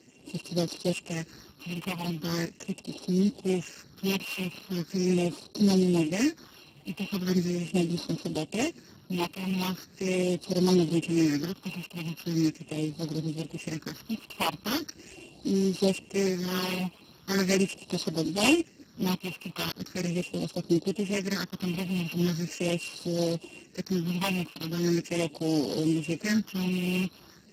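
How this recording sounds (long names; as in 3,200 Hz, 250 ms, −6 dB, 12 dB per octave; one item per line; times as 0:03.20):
a buzz of ramps at a fixed pitch in blocks of 16 samples
phaser sweep stages 6, 0.4 Hz, lowest notch 450–2,100 Hz
Speex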